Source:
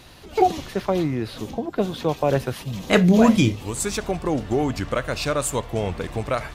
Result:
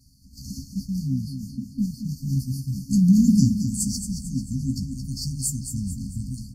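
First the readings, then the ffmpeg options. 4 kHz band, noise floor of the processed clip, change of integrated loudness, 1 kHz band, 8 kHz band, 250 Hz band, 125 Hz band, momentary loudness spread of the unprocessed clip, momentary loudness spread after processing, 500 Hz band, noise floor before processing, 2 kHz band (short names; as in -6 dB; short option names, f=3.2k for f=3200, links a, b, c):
-6.5 dB, -48 dBFS, -2.0 dB, under -40 dB, +1.0 dB, 0.0 dB, +1.0 dB, 12 LU, 15 LU, under -40 dB, -42 dBFS, under -40 dB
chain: -filter_complex "[0:a]acompressor=mode=upward:threshold=-29dB:ratio=2.5,agate=range=-33dB:threshold=-27dB:ratio=3:detection=peak,afftfilt=real='re*(1-between(b*sr/4096,270,4300))':imag='im*(1-between(b*sr/4096,270,4300))':win_size=4096:overlap=0.75,asplit=2[a][b];[b]adelay=15,volume=-8dB[c];[a][c]amix=inputs=2:normalize=0,asplit=2[d][e];[e]aecho=0:1:222|444|666|888|1110:0.376|0.173|0.0795|0.0366|0.0168[f];[d][f]amix=inputs=2:normalize=0"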